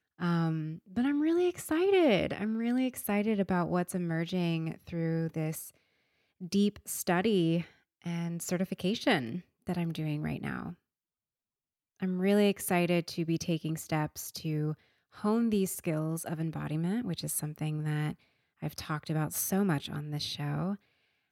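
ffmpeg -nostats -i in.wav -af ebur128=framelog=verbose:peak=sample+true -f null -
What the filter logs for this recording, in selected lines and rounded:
Integrated loudness:
  I:         -31.7 LUFS
  Threshold: -42.0 LUFS
Loudness range:
  LRA:         4.9 LU
  Threshold: -52.4 LUFS
  LRA low:   -34.5 LUFS
  LRA high:  -29.5 LUFS
Sample peak:
  Peak:      -14.5 dBFS
True peak:
  Peak:      -14.5 dBFS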